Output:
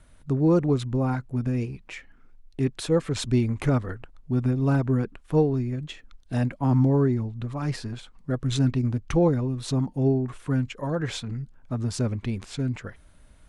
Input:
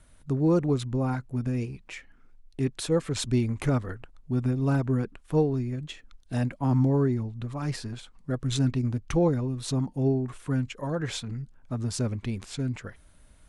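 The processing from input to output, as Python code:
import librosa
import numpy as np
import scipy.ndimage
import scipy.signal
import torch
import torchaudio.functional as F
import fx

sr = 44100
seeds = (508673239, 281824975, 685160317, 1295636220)

y = fx.high_shelf(x, sr, hz=5700.0, db=-6.0)
y = y * 10.0 ** (2.5 / 20.0)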